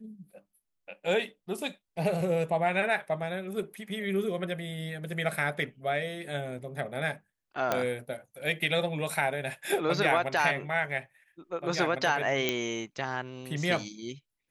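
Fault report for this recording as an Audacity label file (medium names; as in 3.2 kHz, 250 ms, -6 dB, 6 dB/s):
7.720000	7.720000	pop -12 dBFS
12.490000	12.490000	pop -12 dBFS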